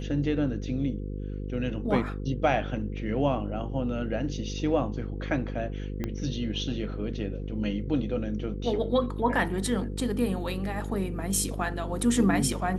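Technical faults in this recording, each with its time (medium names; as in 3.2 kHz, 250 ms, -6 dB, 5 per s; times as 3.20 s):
buzz 50 Hz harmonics 10 -34 dBFS
6.04 s: pop -18 dBFS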